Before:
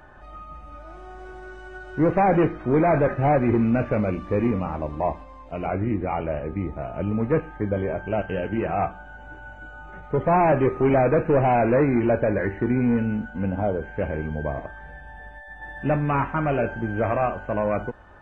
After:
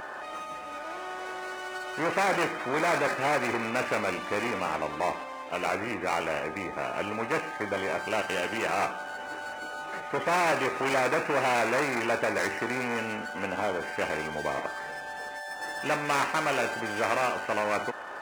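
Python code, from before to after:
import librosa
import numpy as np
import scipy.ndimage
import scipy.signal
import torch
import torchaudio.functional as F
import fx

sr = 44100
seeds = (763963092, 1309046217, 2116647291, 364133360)

y = scipy.signal.medfilt(x, 9)
y = scipy.signal.sosfilt(scipy.signal.butter(2, 560.0, 'highpass', fs=sr, output='sos'), y)
y = fx.spectral_comp(y, sr, ratio=2.0)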